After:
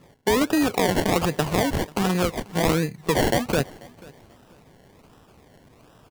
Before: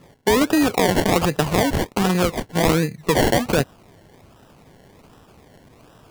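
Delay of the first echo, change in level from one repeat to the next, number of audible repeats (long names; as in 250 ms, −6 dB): 488 ms, −11.5 dB, 2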